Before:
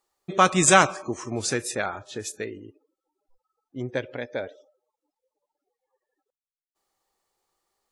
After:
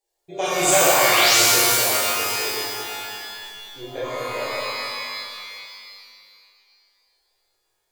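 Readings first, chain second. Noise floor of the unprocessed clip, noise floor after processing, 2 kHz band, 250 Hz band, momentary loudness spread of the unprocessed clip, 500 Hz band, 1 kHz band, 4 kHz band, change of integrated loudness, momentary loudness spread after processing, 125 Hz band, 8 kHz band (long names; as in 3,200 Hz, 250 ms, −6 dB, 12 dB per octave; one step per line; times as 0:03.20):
below −85 dBFS, −73 dBFS, +5.5 dB, −2.5 dB, 19 LU, +4.0 dB, +2.5 dB, +13.0 dB, +5.5 dB, 22 LU, −5.0 dB, +7.5 dB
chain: sound drawn into the spectrogram rise, 0:00.80–0:01.37, 460–8,100 Hz −20 dBFS
phaser with its sweep stopped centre 510 Hz, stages 4
reverb with rising layers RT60 2.3 s, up +12 semitones, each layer −2 dB, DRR −9.5 dB
level −6 dB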